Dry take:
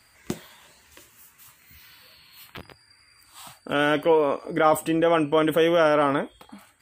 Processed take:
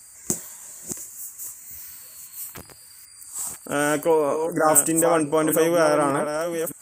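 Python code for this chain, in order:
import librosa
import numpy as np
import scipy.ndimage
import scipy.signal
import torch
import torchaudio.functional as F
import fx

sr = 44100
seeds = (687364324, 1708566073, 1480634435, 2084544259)

y = fx.reverse_delay(x, sr, ms=611, wet_db=-7.0)
y = fx.high_shelf_res(y, sr, hz=5100.0, db=13.0, q=3.0)
y = fx.spec_erase(y, sr, start_s=4.46, length_s=0.22, low_hz=2000.0, high_hz=4900.0)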